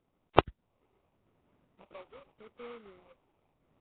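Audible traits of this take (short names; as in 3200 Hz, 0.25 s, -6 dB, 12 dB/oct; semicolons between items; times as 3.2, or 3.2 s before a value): phasing stages 12, 0.84 Hz, lowest notch 190–2700 Hz; aliases and images of a low sample rate 1700 Hz, jitter 20%; Nellymoser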